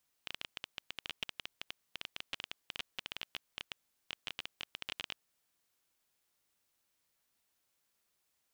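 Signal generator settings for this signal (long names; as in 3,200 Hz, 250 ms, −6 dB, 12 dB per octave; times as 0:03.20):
Geiger counter clicks 14 per second −21.5 dBFS 4.98 s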